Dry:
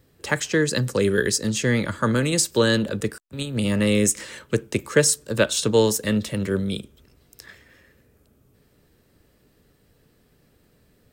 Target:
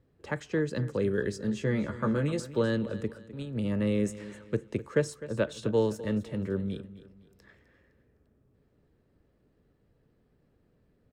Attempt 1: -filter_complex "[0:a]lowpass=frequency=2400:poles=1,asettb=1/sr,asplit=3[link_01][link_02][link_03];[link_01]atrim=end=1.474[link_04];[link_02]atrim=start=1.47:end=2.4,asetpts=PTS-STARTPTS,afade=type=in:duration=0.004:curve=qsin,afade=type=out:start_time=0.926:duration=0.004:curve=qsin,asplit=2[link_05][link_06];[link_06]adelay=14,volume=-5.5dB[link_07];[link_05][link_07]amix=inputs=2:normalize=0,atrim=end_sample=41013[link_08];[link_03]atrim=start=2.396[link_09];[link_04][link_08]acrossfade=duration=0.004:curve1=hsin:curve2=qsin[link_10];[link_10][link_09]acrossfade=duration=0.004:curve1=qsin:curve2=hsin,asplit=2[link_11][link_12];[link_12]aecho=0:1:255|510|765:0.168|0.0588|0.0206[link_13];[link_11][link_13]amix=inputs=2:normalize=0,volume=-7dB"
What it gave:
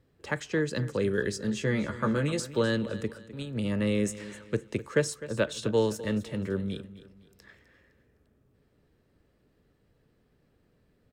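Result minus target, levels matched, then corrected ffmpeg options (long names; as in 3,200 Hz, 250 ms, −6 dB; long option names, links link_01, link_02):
2,000 Hz band +3.5 dB
-filter_complex "[0:a]lowpass=frequency=1000:poles=1,asettb=1/sr,asplit=3[link_01][link_02][link_03];[link_01]atrim=end=1.474[link_04];[link_02]atrim=start=1.47:end=2.4,asetpts=PTS-STARTPTS,afade=type=in:duration=0.004:curve=qsin,afade=type=out:start_time=0.926:duration=0.004:curve=qsin,asplit=2[link_05][link_06];[link_06]adelay=14,volume=-5.5dB[link_07];[link_05][link_07]amix=inputs=2:normalize=0,atrim=end_sample=41013[link_08];[link_03]atrim=start=2.396[link_09];[link_04][link_08]acrossfade=duration=0.004:curve1=hsin:curve2=qsin[link_10];[link_10][link_09]acrossfade=duration=0.004:curve1=qsin:curve2=hsin,asplit=2[link_11][link_12];[link_12]aecho=0:1:255|510|765:0.168|0.0588|0.0206[link_13];[link_11][link_13]amix=inputs=2:normalize=0,volume=-7dB"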